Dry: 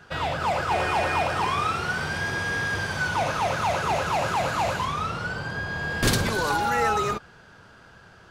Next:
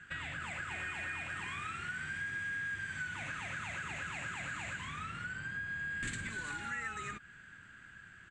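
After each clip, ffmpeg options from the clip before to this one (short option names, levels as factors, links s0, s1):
-af "firequalizer=gain_entry='entry(290,0);entry(450,-13);entry(900,-11);entry(1700,11);entry(5300,-11);entry(7700,12);entry(12000,-27)':delay=0.05:min_phase=1,acompressor=threshold=0.0251:ratio=3,volume=0.376"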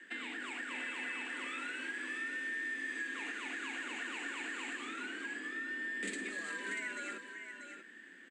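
-filter_complex "[0:a]afreqshift=170,asplit=2[s0][s1];[s1]aecho=0:1:638:0.398[s2];[s0][s2]amix=inputs=2:normalize=0,volume=0.891"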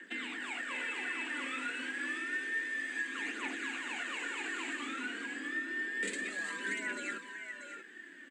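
-af "aphaser=in_gain=1:out_gain=1:delay=4.3:decay=0.42:speed=0.29:type=triangular,volume=1.26"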